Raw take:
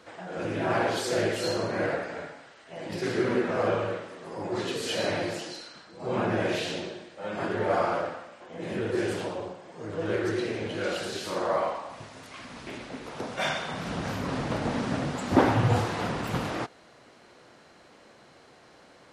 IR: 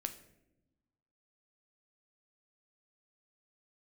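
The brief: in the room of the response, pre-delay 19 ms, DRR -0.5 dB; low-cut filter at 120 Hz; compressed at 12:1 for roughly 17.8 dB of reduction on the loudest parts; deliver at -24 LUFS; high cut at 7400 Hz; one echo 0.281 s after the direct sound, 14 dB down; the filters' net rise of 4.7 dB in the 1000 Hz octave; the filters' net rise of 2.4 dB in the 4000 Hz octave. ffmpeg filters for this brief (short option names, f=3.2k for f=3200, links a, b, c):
-filter_complex "[0:a]highpass=120,lowpass=7.4k,equalizer=f=1k:t=o:g=6,equalizer=f=4k:t=o:g=3,acompressor=threshold=-32dB:ratio=12,aecho=1:1:281:0.2,asplit=2[a][b];[1:a]atrim=start_sample=2205,adelay=19[c];[b][c]afir=irnorm=-1:irlink=0,volume=1.5dB[d];[a][d]amix=inputs=2:normalize=0,volume=9dB"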